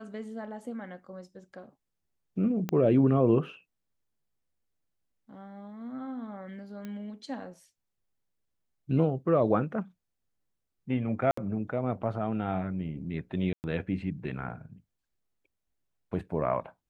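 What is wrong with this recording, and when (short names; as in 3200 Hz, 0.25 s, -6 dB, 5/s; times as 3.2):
2.69 pop -17 dBFS
6.85 pop -27 dBFS
11.31–11.37 gap 64 ms
13.53–13.64 gap 0.109 s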